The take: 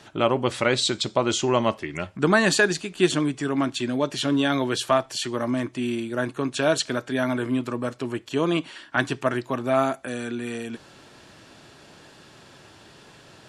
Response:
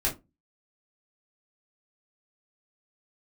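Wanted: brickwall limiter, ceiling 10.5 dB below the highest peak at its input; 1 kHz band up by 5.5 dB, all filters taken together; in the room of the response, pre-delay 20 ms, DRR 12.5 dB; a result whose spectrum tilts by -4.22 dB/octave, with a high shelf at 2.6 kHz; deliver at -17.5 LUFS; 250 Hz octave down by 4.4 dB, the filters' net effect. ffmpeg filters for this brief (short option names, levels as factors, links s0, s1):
-filter_complex "[0:a]equalizer=f=250:t=o:g=-6,equalizer=f=1000:t=o:g=8,highshelf=f=2600:g=-4,alimiter=limit=0.224:level=0:latency=1,asplit=2[s0][s1];[1:a]atrim=start_sample=2205,adelay=20[s2];[s1][s2]afir=irnorm=-1:irlink=0,volume=0.0944[s3];[s0][s3]amix=inputs=2:normalize=0,volume=2.82"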